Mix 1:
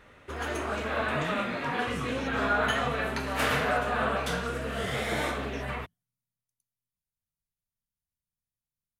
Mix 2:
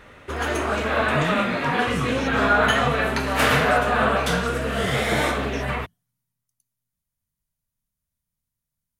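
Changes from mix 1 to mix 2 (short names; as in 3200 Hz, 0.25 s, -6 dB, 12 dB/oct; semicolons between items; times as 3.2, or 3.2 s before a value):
speech +10.5 dB; background +8.0 dB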